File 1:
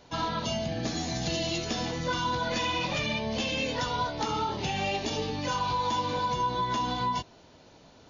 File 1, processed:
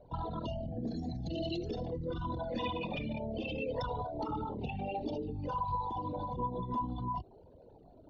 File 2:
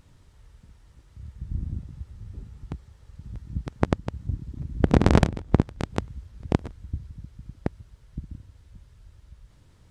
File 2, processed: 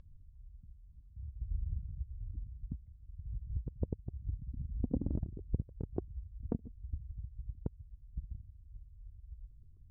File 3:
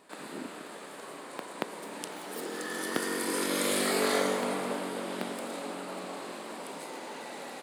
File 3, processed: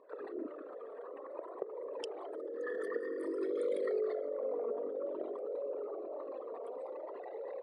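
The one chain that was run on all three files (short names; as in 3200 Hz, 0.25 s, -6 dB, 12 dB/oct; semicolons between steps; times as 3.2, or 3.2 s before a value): formant sharpening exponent 3; LPF 5100 Hz 12 dB/oct; compressor 3:1, threshold -32 dBFS; flange 0.53 Hz, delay 1.8 ms, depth 2.7 ms, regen +44%; gain +2 dB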